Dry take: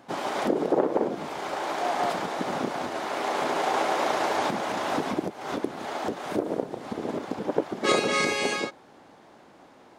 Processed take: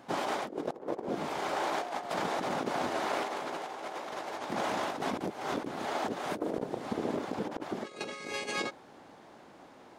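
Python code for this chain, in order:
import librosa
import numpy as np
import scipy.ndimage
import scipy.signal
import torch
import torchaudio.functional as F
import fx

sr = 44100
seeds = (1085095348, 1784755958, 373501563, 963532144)

y = fx.over_compress(x, sr, threshold_db=-30.0, ratio=-0.5)
y = y * 10.0 ** (-4.0 / 20.0)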